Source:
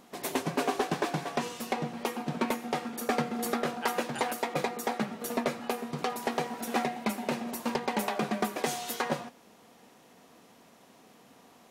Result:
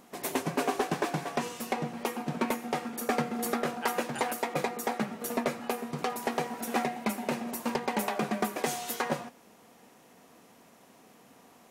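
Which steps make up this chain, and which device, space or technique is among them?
exciter from parts (in parallel at −8 dB: high-pass filter 2,800 Hz 24 dB per octave + soft clipping −33 dBFS, distortion −16 dB + high-pass filter 3,900 Hz 6 dB per octave)

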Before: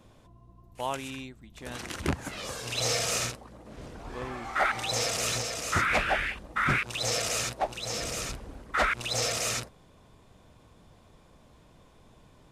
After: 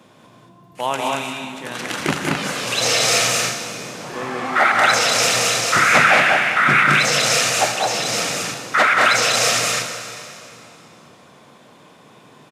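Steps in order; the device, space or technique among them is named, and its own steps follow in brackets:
stadium PA (high-pass filter 140 Hz 24 dB per octave; parametric band 1,900 Hz +4 dB 2.3 octaves; loudspeakers that aren't time-aligned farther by 65 metres −4 dB, 77 metres −3 dB; convolution reverb RT60 2.9 s, pre-delay 29 ms, DRR 6.5 dB)
level +7.5 dB

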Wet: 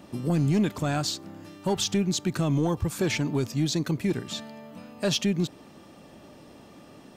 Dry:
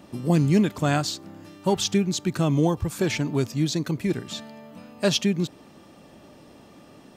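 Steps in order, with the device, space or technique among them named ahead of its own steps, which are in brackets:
soft clipper into limiter (soft clipping −12 dBFS, distortion −20 dB; brickwall limiter −17 dBFS, peak gain reduction 4 dB)

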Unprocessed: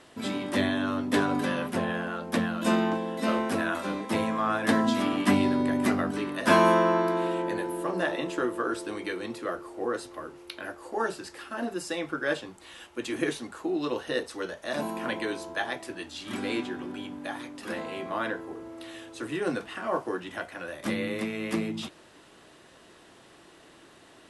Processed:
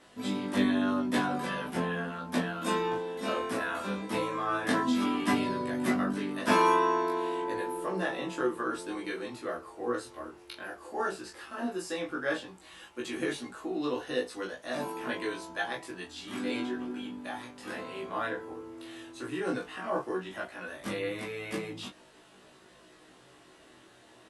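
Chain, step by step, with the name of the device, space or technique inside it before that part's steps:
double-tracked vocal (double-tracking delay 16 ms −2 dB; chorus effect 0.14 Hz, delay 20 ms, depth 5.5 ms)
level −2 dB

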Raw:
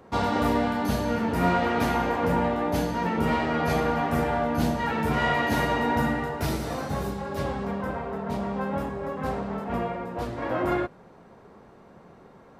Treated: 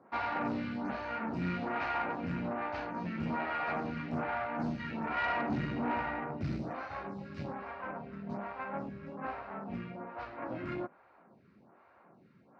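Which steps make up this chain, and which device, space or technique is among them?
0:05.25–0:06.71: tilt shelving filter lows +5 dB, about 1,100 Hz
vibe pedal into a guitar amplifier (phaser with staggered stages 1.2 Hz; tube saturation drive 23 dB, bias 0.6; loudspeaker in its box 99–4,500 Hz, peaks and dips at 450 Hz −9 dB, 1,400 Hz +4 dB, 2,400 Hz +5 dB, 3,400 Hz −8 dB)
level −3.5 dB

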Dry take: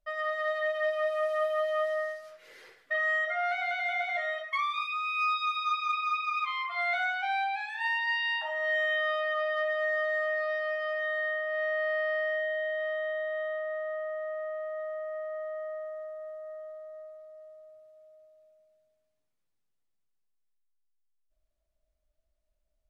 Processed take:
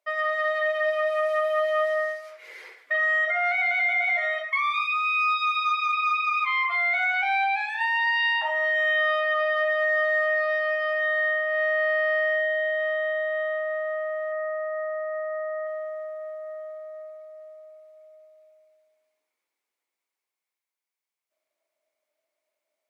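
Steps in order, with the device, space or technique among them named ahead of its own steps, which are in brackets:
laptop speaker (high-pass filter 320 Hz 24 dB per octave; parametric band 960 Hz +5 dB 0.54 octaves; parametric band 2,200 Hz +11 dB 0.27 octaves; brickwall limiter −22 dBFS, peak gain reduction 9.5 dB)
0:14.32–0:15.67: high shelf with overshoot 2,600 Hz −10 dB, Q 1.5
level +4.5 dB

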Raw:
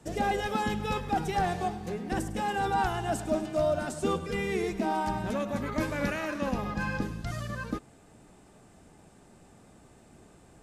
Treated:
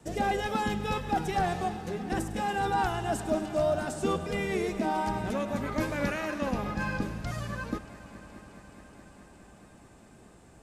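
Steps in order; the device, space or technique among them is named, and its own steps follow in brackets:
multi-head tape echo (echo machine with several playback heads 211 ms, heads all three, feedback 72%, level −22.5 dB; tape wow and flutter 19 cents)

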